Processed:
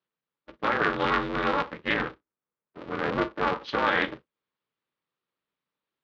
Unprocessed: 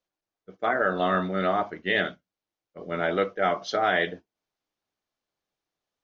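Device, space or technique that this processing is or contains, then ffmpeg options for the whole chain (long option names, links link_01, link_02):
ring modulator pedal into a guitar cabinet: -filter_complex "[0:a]asettb=1/sr,asplit=3[link_01][link_02][link_03];[link_01]atrim=end=1.944[link_04];[link_02]atrim=start=1.94:end=3.62,asetpts=PTS-STARTPTS,afade=type=in:duration=0.004:curve=qsin,afade=type=out:start_time=1.676:duration=0.004:curve=qsin,lowpass=1500[link_05];[link_03]atrim=start=3.616[link_06];[link_04][link_05]acrossfade=duration=0.004:curve1=hsin:curve2=qsin[link_07];[link_07][link_06]acrossfade=duration=0.004:curve1=qsin:curve2=hsin,aeval=exprs='val(0)*sgn(sin(2*PI*140*n/s))':channel_layout=same,highpass=82,equalizer=frequency=97:width_type=q:width=4:gain=-8,equalizer=frequency=710:width_type=q:width=4:gain=-9,equalizer=frequency=1200:width_type=q:width=4:gain=3,lowpass=frequency=3900:width=0.5412,lowpass=frequency=3900:width=1.3066"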